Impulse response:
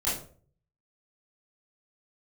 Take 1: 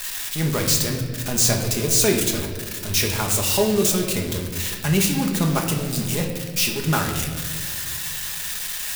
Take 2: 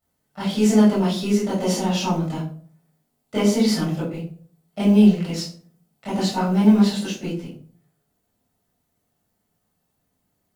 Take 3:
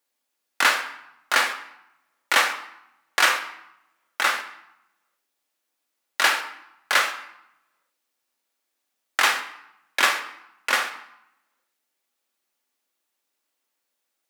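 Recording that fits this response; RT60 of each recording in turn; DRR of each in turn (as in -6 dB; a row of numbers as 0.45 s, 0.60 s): 2; 1.9 s, 0.45 s, 0.80 s; 0.5 dB, -11.0 dB, 4.5 dB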